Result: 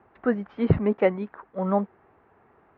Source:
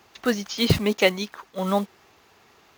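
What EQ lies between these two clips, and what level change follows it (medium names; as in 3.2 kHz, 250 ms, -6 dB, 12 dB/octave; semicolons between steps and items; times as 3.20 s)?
low-pass 1.6 kHz 24 dB/octave; peaking EQ 1.2 kHz -3 dB 0.77 oct; 0.0 dB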